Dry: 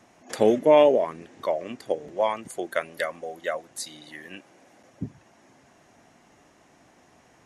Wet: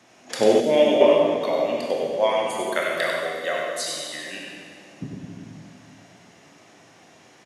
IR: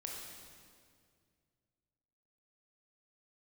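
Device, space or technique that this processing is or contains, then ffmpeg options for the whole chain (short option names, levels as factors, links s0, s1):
PA in a hall: -filter_complex "[0:a]highpass=110,equalizer=f=3700:t=o:w=1.8:g=7.5,aecho=1:1:97:0.562[s0];[1:a]atrim=start_sample=2205[s1];[s0][s1]afir=irnorm=-1:irlink=0,asettb=1/sr,asplit=3[s2][s3][s4];[s2]atrim=end=0.604[s5];[s3]atrim=start=0.6:end=1.01,asetpts=PTS-STARTPTS,afade=t=in:d=0.004:c=qsin,afade=t=out:st=0.406:d=0.004:c=qsin,equalizer=f=100:t=o:w=0.67:g=-11,equalizer=f=400:t=o:w=0.67:g=-6,equalizer=f=1000:t=o:w=0.67:g=-12,equalizer=f=2500:t=o:w=0.67:g=-6[s6];[s4]atrim=start=1.006[s7];[s5][s6]acrossfade=d=0.004:c1=hsin:c2=qsin[s8];[s8][s7]acrossfade=d=0.004:c1=qsin:c2=hsin,volume=1.58"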